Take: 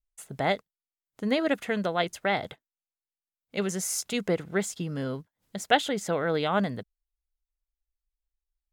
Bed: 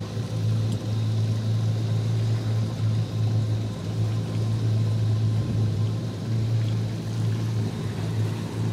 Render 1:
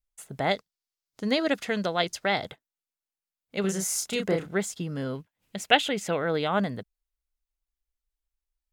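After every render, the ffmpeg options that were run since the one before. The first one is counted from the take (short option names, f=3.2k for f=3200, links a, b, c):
-filter_complex "[0:a]asettb=1/sr,asplit=3[a][b][c];[a]atrim=end=0.514[d];[b]atrim=start=0.51:end=2.46,asetpts=PTS-STARTPTS,afade=t=in:d=0.004:c=qsin,afade=t=out:st=1.946:d=0.004:c=qsin,equalizer=f=5k:t=o:w=1:g=9[e];[c]atrim=start=2.456[f];[d][e]acrossfade=d=0.004:c1=hsin:c2=qsin[g];[g][f]acrossfade=d=0.004:c1=qsin:c2=hsin,asettb=1/sr,asplit=3[h][i][j];[h]atrim=end=3.614[k];[i]atrim=start=3.61:end=4.47,asetpts=PTS-STARTPTS,afade=t=in:d=0.004:c=qsin,afade=t=out:st=0.856:d=0.004:c=qsin,asplit=2[l][m];[m]adelay=31,volume=-3.5dB[n];[l][n]amix=inputs=2:normalize=0,atrim=end_sample=37926[o];[j]atrim=start=4.466[p];[k][o]acrossfade=d=0.004:c1=hsin:c2=qsin[q];[q][p]acrossfade=d=0.004:c1=qsin:c2=hsin,asettb=1/sr,asplit=3[r][s][t];[r]atrim=end=5.154[u];[s]atrim=start=5.15:end=6.17,asetpts=PTS-STARTPTS,afade=t=in:d=0.004:c=qsin,afade=t=out:st=1.016:d=0.004:c=qsin,equalizer=f=2.6k:t=o:w=0.55:g=9.5[v];[t]atrim=start=6.166[w];[u][v]acrossfade=d=0.004:c1=hsin:c2=qsin[x];[x][w]acrossfade=d=0.004:c1=qsin:c2=hsin"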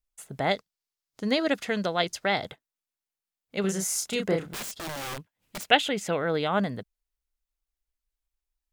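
-filter_complex "[0:a]asettb=1/sr,asplit=3[a][b][c];[a]atrim=end=4.454[d];[b]atrim=start=4.45:end=5.67,asetpts=PTS-STARTPTS,afade=t=in:d=0.004:c=qsin,afade=t=out:st=1.216:d=0.004:c=qsin,aeval=exprs='(mod(33.5*val(0)+1,2)-1)/33.5':c=same[e];[c]atrim=start=5.666[f];[d][e]acrossfade=d=0.004:c1=hsin:c2=qsin[g];[g][f]acrossfade=d=0.004:c1=qsin:c2=hsin"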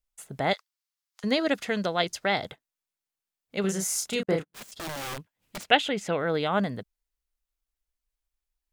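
-filter_complex "[0:a]asettb=1/sr,asplit=3[a][b][c];[a]atrim=end=0.534[d];[b]atrim=start=0.53:end=1.24,asetpts=PTS-STARTPTS,afade=t=in:d=0.004:c=qsin,afade=t=out:st=0.706:d=0.004:c=qsin,highpass=f=930:w=0.5412,highpass=f=930:w=1.3066[e];[c]atrim=start=1.236[f];[d][e]acrossfade=d=0.004:c1=hsin:c2=qsin[g];[g][f]acrossfade=d=0.004:c1=qsin:c2=hsin,asettb=1/sr,asplit=3[h][i][j];[h]atrim=end=4.234[k];[i]atrim=start=4.23:end=4.72,asetpts=PTS-STARTPTS,afade=t=in:d=0.004:c=qsin,afade=t=out:st=0.486:d=0.004:c=qsin,agate=range=-44dB:threshold=-35dB:ratio=16:release=100:detection=peak[l];[j]atrim=start=4.716[m];[k][l]acrossfade=d=0.004:c1=hsin:c2=qsin[n];[n][m]acrossfade=d=0.004:c1=qsin:c2=hsin,asettb=1/sr,asplit=3[o][p][q];[o]atrim=end=5.564[r];[p]atrim=start=5.56:end=6.19,asetpts=PTS-STARTPTS,afade=t=in:d=0.004:c=qsin,afade=t=out:st=0.626:d=0.004:c=qsin,highshelf=f=8.7k:g=-10[s];[q]atrim=start=6.186[t];[r][s]acrossfade=d=0.004:c1=hsin:c2=qsin[u];[u][t]acrossfade=d=0.004:c1=qsin:c2=hsin"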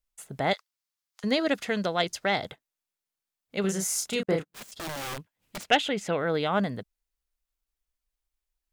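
-af "asoftclip=type=tanh:threshold=-9dB"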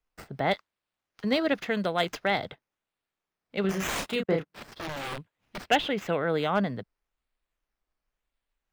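-filter_complex "[0:a]acrossover=split=100|1400|5000[a][b][c][d];[d]acrusher=samples=10:mix=1:aa=0.000001:lfo=1:lforange=6:lforate=0.92[e];[a][b][c][e]amix=inputs=4:normalize=0,asoftclip=type=hard:threshold=-14dB"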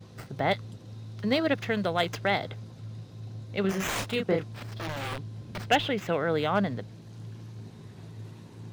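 -filter_complex "[1:a]volume=-17dB[a];[0:a][a]amix=inputs=2:normalize=0"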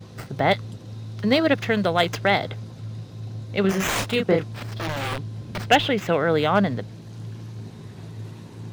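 -af "volume=6.5dB"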